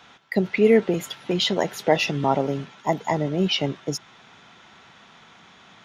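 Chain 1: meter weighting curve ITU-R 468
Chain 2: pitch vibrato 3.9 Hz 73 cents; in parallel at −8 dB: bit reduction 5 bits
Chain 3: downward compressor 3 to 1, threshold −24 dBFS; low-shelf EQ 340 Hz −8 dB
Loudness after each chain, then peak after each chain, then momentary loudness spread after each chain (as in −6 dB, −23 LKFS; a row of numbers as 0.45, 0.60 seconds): −20.5, −20.0, −31.0 LKFS; −1.0, −2.0, −13.5 dBFS; 14, 11, 21 LU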